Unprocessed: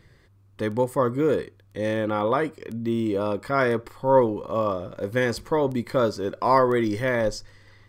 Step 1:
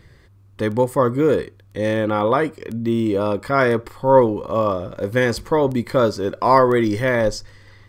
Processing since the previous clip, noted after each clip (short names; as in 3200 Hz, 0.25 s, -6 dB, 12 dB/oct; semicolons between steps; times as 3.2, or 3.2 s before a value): bell 61 Hz +4 dB 1.1 oct; gain +5 dB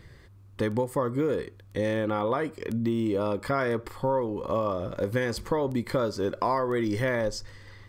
compressor 6:1, threshold -22 dBFS, peak gain reduction 14 dB; gain -1.5 dB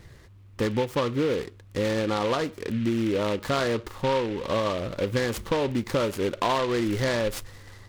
noise-modulated delay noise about 2200 Hz, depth 0.062 ms; gain +1.5 dB